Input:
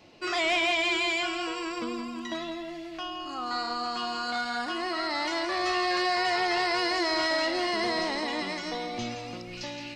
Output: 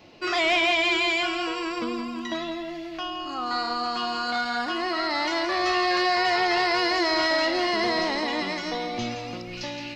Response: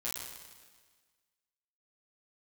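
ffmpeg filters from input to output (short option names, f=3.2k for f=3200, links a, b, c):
-af "equalizer=f=8.7k:t=o:w=0.47:g=-10,volume=4dB"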